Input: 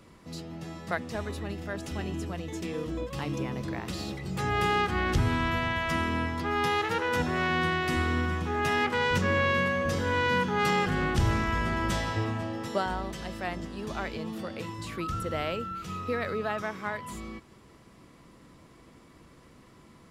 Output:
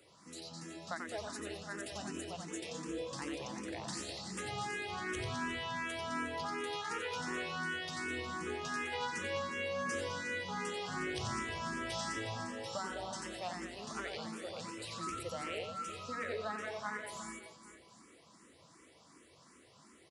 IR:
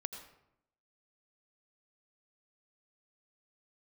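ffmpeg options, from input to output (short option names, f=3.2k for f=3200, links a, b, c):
-filter_complex "[0:a]highpass=80,bass=f=250:g=-8,treble=f=4k:g=9,acompressor=threshold=-29dB:ratio=6,asplit=2[a][b];[b]aecho=0:1:90|207|359.1|556.8|813.9:0.631|0.398|0.251|0.158|0.1[c];[a][c]amix=inputs=2:normalize=0,aresample=22050,aresample=44100,asplit=2[d][e];[e]afreqshift=2.7[f];[d][f]amix=inputs=2:normalize=1,volume=-4.5dB"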